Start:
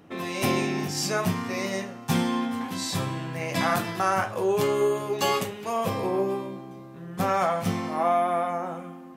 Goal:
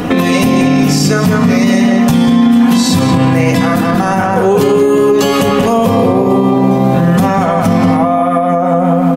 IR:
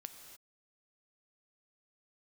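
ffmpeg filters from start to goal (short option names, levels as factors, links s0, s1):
-filter_complex "[0:a]aecho=1:1:4.1:0.5,asplit=2[s0][s1];[s1]adelay=183,lowpass=f=2000:p=1,volume=0.708,asplit=2[s2][s3];[s3]adelay=183,lowpass=f=2000:p=1,volume=0.37,asplit=2[s4][s5];[s5]adelay=183,lowpass=f=2000:p=1,volume=0.37,asplit=2[s6][s7];[s7]adelay=183,lowpass=f=2000:p=1,volume=0.37,asplit=2[s8][s9];[s9]adelay=183,lowpass=f=2000:p=1,volume=0.37[s10];[s0][s2][s4][s6][s8][s10]amix=inputs=6:normalize=0,acompressor=threshold=0.0141:ratio=6,lowshelf=f=65:g=8.5,acrossover=split=420[s11][s12];[s12]acompressor=threshold=0.00501:ratio=6[s13];[s11][s13]amix=inputs=2:normalize=0,alimiter=level_in=56.2:limit=0.891:release=50:level=0:latency=1,volume=0.891"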